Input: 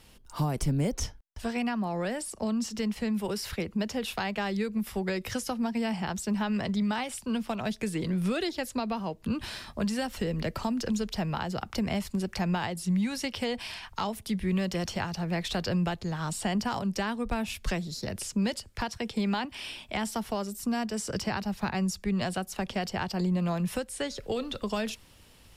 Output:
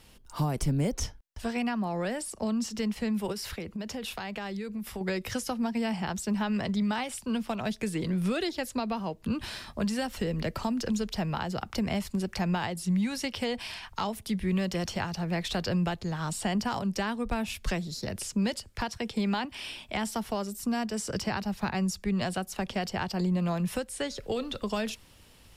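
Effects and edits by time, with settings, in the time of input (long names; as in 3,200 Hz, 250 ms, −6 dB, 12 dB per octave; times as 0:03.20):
0:03.32–0:05.01: downward compressor, threshold −32 dBFS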